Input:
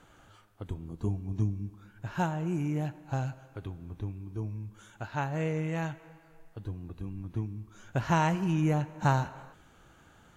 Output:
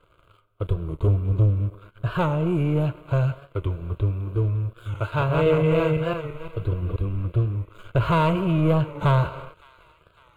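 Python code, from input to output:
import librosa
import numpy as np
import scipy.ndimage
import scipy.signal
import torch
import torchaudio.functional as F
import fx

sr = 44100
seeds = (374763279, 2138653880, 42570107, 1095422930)

y = fx.reverse_delay_fb(x, sr, ms=170, feedback_pct=47, wet_db=-2.0, at=(4.61, 6.96))
y = fx.leveller(y, sr, passes=3)
y = fx.high_shelf(y, sr, hz=3200.0, db=-11.5)
y = fx.fixed_phaser(y, sr, hz=1200.0, stages=8)
y = fx.echo_wet_highpass(y, sr, ms=561, feedback_pct=60, hz=1500.0, wet_db=-21)
y = fx.record_warp(y, sr, rpm=45.0, depth_cents=100.0)
y = y * 10.0 ** (5.0 / 20.0)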